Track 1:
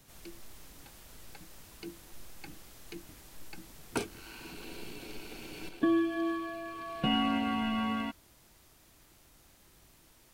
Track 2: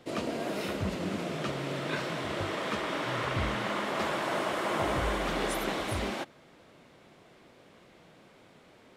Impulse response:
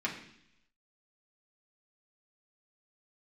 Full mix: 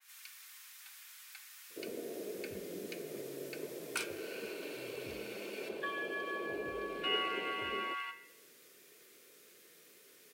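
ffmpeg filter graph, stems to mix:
-filter_complex "[0:a]highpass=frequency=1300:width=0.5412,highpass=frequency=1300:width=1.3066,highshelf=frequency=12000:gain=4,volume=-2.5dB,asplit=2[link_01][link_02];[link_02]volume=-5dB[link_03];[1:a]lowpass=frequency=430:width_type=q:width=4.5,aemphasis=mode=production:type=bsi,adelay=1700,volume=-13dB[link_04];[2:a]atrim=start_sample=2205[link_05];[link_03][link_05]afir=irnorm=-1:irlink=0[link_06];[link_01][link_04][link_06]amix=inputs=3:normalize=0,adynamicequalizer=threshold=0.00316:dfrequency=2500:dqfactor=0.7:tfrequency=2500:tqfactor=0.7:attack=5:release=100:ratio=0.375:range=2.5:mode=cutabove:tftype=highshelf"

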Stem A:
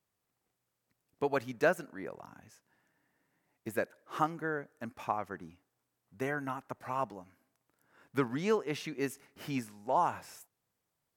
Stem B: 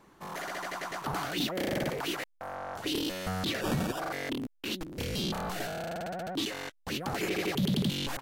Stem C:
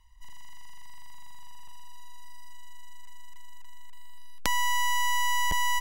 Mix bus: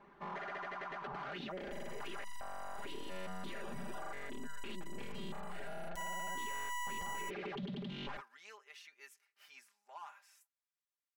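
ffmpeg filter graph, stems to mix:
ffmpeg -i stem1.wav -i stem2.wav -i stem3.wav -filter_complex "[0:a]highpass=1300,volume=29.5dB,asoftclip=hard,volume=-29.5dB,volume=-13dB[link_01];[1:a]lowpass=2300,bandreject=frequency=50:width_type=h:width=6,bandreject=frequency=100:width_type=h:width=6,bandreject=frequency=150:width_type=h:width=6,bandreject=frequency=200:width_type=h:width=6,volume=-1dB[link_02];[2:a]acompressor=threshold=-28dB:ratio=6,aeval=exprs='0.531*(cos(1*acos(clip(val(0)/0.531,-1,1)))-cos(1*PI/2))+0.133*(cos(5*acos(clip(val(0)/0.531,-1,1)))-cos(5*PI/2))+0.119*(cos(8*acos(clip(val(0)/0.531,-1,1)))-cos(8*PI/2))':channel_layout=same,adelay=1500,volume=-9.5dB[link_03];[link_01][link_02]amix=inputs=2:normalize=0,highshelf=frequency=5900:gain=-5.5,acompressor=threshold=-38dB:ratio=6,volume=0dB[link_04];[link_03][link_04]amix=inputs=2:normalize=0,lowshelf=frequency=440:gain=-6,aecho=1:1:5:0.75,alimiter=level_in=10.5dB:limit=-24dB:level=0:latency=1:release=46,volume=-10.5dB" out.wav

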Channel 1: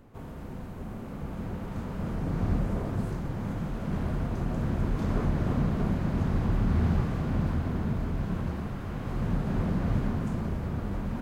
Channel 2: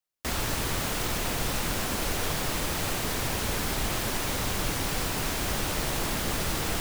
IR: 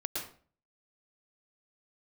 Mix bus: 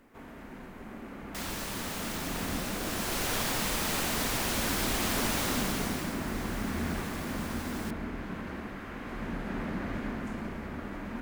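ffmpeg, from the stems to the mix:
-filter_complex "[0:a]equalizer=frequency=125:width_type=o:width=1:gain=-9,equalizer=frequency=250:width_type=o:width=1:gain=7,equalizer=frequency=2000:width_type=o:width=1:gain=8,acrusher=bits=11:mix=0:aa=0.000001,volume=-5.5dB,asplit=2[link_01][link_02];[link_02]volume=-6dB[link_03];[1:a]adelay=1100,afade=type=in:start_time=2.79:duration=0.49:silence=0.473151,afade=type=out:start_time=5.41:duration=0.75:silence=0.223872[link_04];[2:a]atrim=start_sample=2205[link_05];[link_03][link_05]afir=irnorm=-1:irlink=0[link_06];[link_01][link_04][link_06]amix=inputs=3:normalize=0,lowshelf=frequency=400:gain=-7.5"

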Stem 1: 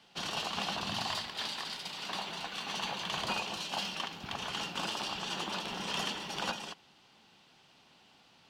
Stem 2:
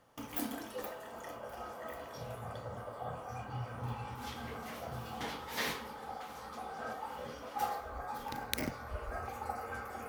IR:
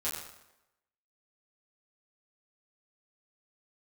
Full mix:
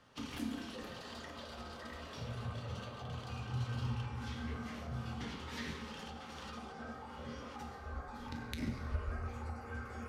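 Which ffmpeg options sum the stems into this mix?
-filter_complex "[0:a]volume=-11.5dB,asplit=3[link_01][link_02][link_03];[link_01]atrim=end=4.06,asetpts=PTS-STARTPTS,afade=type=out:start_time=4.056:duration=0.004:curve=hsin[link_04];[link_02]atrim=start=4.06:end=5.2,asetpts=PTS-STARTPTS,volume=0[link_05];[link_03]atrim=start=5.2,asetpts=PTS-STARTPTS,afade=type=in:duration=0.004:curve=hsin[link_06];[link_04][link_05][link_06]concat=n=3:v=0:a=1[link_07];[1:a]lowpass=6600,volume=0.5dB,asplit=2[link_08][link_09];[link_09]volume=-5dB[link_10];[2:a]atrim=start_sample=2205[link_11];[link_10][link_11]afir=irnorm=-1:irlink=0[link_12];[link_07][link_08][link_12]amix=inputs=3:normalize=0,acrossover=split=250[link_13][link_14];[link_14]acompressor=threshold=-43dB:ratio=5[link_15];[link_13][link_15]amix=inputs=2:normalize=0,equalizer=frequency=720:width=1.6:gain=-7.5"

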